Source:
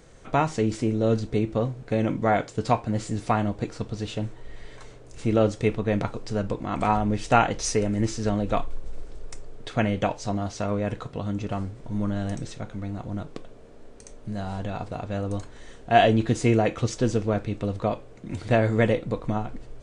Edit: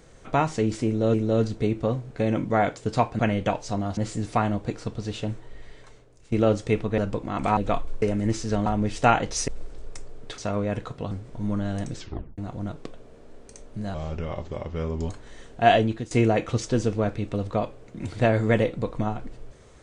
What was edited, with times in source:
0.86–1.14 loop, 2 plays
4.27–5.26 fade out, to -15.5 dB
5.92–6.35 cut
6.94–7.76 swap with 8.4–8.85
9.75–10.53 move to 2.91
11.26–11.62 cut
12.47 tape stop 0.42 s
14.45–15.38 speed 81%
16.02–16.4 fade out, to -17 dB

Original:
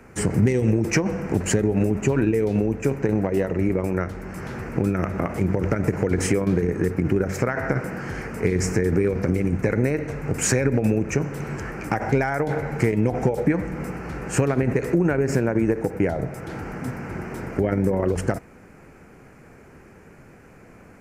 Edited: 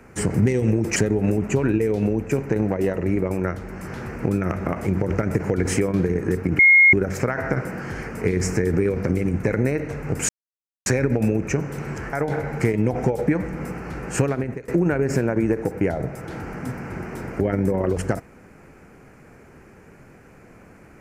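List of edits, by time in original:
0.96–1.49 cut
7.12 add tone 2150 Hz -9 dBFS 0.34 s
10.48 insert silence 0.57 s
11.75–12.32 cut
14.41–14.87 fade out, to -22.5 dB

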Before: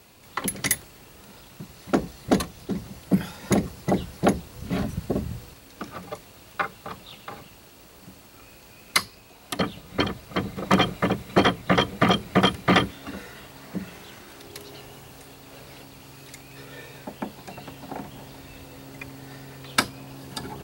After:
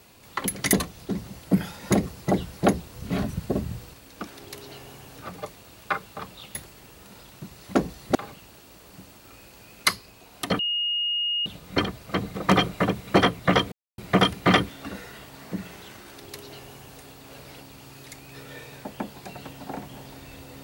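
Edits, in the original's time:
0.73–2.33 move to 7.24
9.68 add tone 2860 Hz -23 dBFS 0.87 s
11.94–12.2 mute
14.3–15.21 copy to 5.87

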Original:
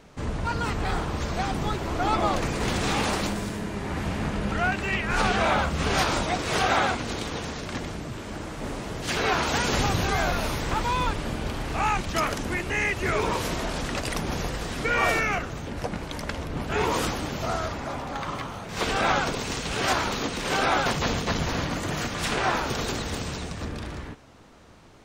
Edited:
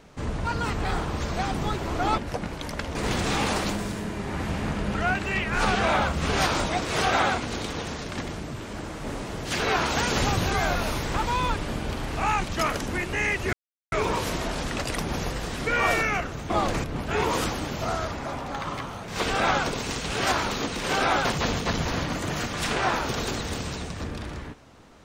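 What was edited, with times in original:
2.18–2.52 swap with 15.68–16.45
13.1 insert silence 0.39 s

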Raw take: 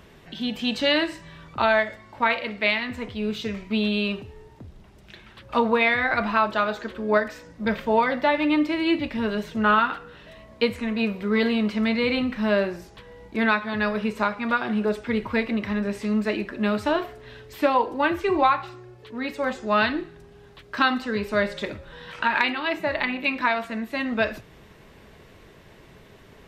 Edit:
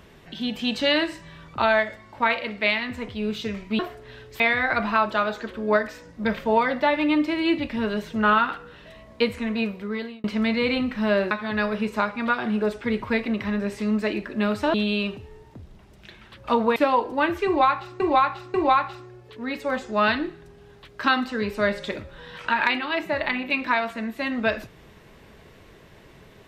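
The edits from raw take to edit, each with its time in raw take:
3.79–5.81 swap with 16.97–17.58
10.94–11.65 fade out
12.72–13.54 cut
18.28–18.82 loop, 3 plays

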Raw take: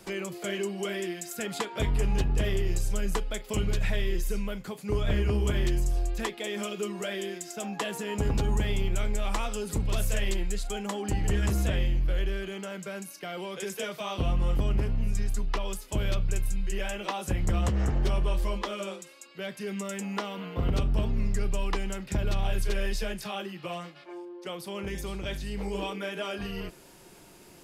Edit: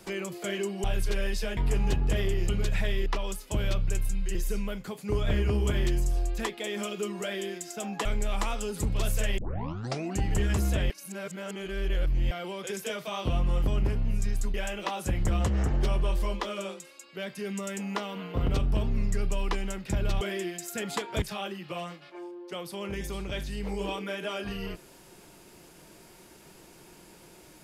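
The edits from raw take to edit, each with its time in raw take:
0.84–1.85 swap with 22.43–23.16
2.77–3.58 cut
7.85–8.98 cut
10.31 tape start 0.81 s
11.83–13.24 reverse
15.47–16.76 move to 4.15

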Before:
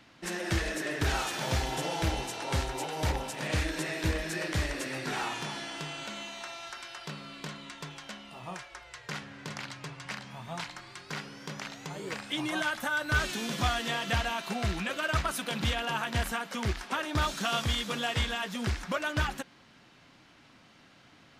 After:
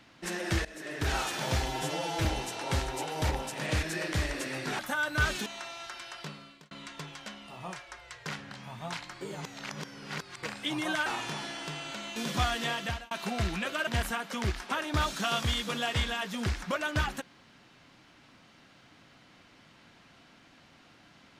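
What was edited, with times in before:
0.65–1.17 fade in, from -19 dB
1.68–2.06 stretch 1.5×
3.64–4.23 cut
5.19–6.29 swap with 12.73–13.4
7.03–7.54 fade out
9.34–10.18 cut
10.88–12.1 reverse
13.97–14.35 fade out
15.11–16.08 cut

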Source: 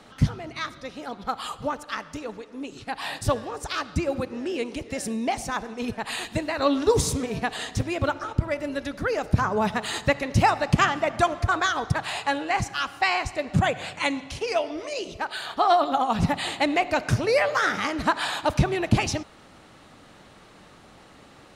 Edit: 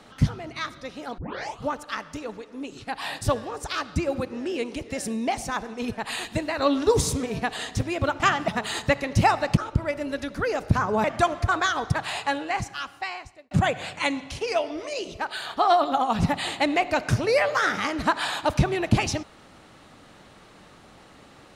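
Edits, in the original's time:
1.18 tape start 0.43 s
8.2–9.67 swap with 10.76–11.04
12.2–13.51 fade out

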